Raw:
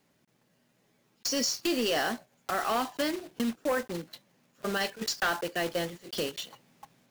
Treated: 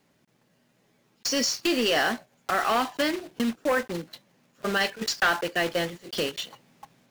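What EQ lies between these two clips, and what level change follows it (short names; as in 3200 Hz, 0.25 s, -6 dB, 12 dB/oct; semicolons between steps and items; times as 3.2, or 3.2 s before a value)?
dynamic EQ 2100 Hz, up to +4 dB, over -41 dBFS, Q 0.8; high shelf 7700 Hz -4 dB; +3.5 dB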